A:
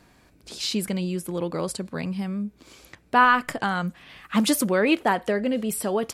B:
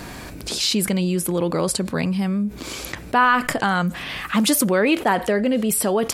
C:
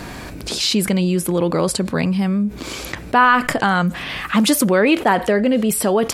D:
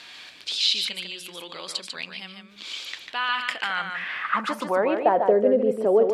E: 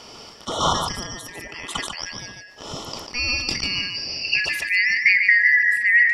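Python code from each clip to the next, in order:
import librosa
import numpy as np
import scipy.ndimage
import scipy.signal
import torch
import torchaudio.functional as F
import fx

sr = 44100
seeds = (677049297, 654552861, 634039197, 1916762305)

y1 = fx.high_shelf(x, sr, hz=9400.0, db=3.5)
y1 = fx.env_flatten(y1, sr, amount_pct=50)
y2 = fx.high_shelf(y1, sr, hz=6400.0, db=-5.0)
y2 = F.gain(torch.from_numpy(y2), 3.5).numpy()
y3 = fx.filter_sweep_bandpass(y2, sr, from_hz=3400.0, to_hz=470.0, start_s=3.37, end_s=5.34, q=2.6)
y3 = y3 + 10.0 ** (-6.0 / 20.0) * np.pad(y3, (int(146 * sr / 1000.0), 0))[:len(y3)]
y3 = F.gain(torch.from_numpy(y3), 1.5).numpy()
y4 = fx.band_shuffle(y3, sr, order='3142')
y4 = fx.sustainer(y4, sr, db_per_s=63.0)
y4 = F.gain(torch.from_numpy(y4), 2.0).numpy()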